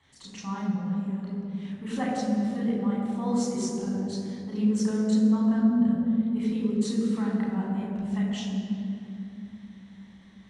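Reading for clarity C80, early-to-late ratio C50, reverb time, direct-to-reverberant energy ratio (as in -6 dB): 1.5 dB, 0.0 dB, 2.8 s, -5.0 dB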